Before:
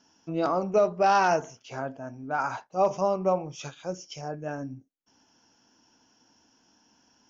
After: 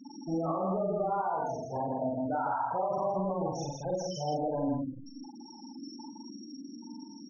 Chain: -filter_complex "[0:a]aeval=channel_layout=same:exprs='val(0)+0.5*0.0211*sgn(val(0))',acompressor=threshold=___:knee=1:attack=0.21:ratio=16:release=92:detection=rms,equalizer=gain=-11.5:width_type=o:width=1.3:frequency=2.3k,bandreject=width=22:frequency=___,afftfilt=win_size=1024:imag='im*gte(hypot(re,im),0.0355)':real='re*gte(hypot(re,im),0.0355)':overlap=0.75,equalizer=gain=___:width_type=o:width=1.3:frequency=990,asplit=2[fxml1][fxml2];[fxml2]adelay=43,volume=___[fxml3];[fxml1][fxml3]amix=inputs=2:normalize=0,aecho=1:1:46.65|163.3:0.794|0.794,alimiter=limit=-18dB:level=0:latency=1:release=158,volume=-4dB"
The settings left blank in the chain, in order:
-26dB, 3.8k, 9.5, -3dB